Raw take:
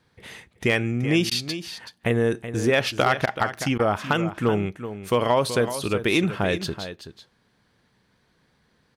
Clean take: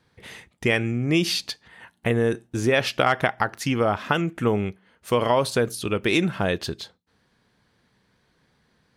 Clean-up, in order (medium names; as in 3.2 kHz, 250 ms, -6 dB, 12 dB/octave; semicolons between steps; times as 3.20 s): clip repair -10 dBFS; interpolate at 1.30/3.26/3.78 s, 12 ms; inverse comb 378 ms -11.5 dB